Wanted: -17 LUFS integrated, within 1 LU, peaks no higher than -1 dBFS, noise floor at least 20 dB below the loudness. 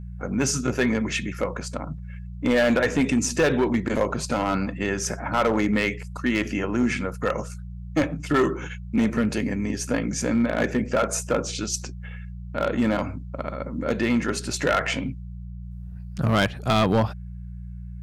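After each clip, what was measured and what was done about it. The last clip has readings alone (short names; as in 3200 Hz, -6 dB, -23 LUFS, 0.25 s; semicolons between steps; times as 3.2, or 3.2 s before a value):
clipped 1.0%; flat tops at -14.5 dBFS; hum 60 Hz; harmonics up to 180 Hz; hum level -34 dBFS; loudness -24.5 LUFS; peak -14.5 dBFS; loudness target -17.0 LUFS
-> clip repair -14.5 dBFS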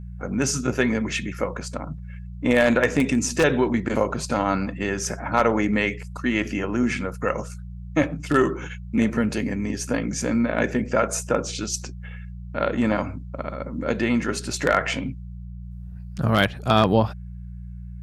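clipped 0.0%; hum 60 Hz; harmonics up to 180 Hz; hum level -33 dBFS
-> de-hum 60 Hz, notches 3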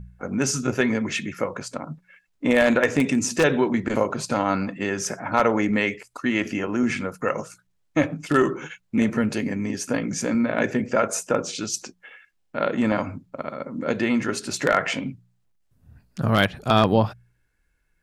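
hum none; loudness -23.5 LUFS; peak -5.0 dBFS; loudness target -17.0 LUFS
-> gain +6.5 dB; limiter -1 dBFS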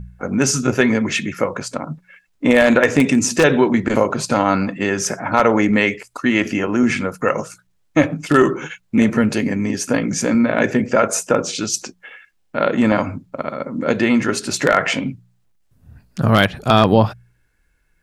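loudness -17.5 LUFS; peak -1.0 dBFS; noise floor -63 dBFS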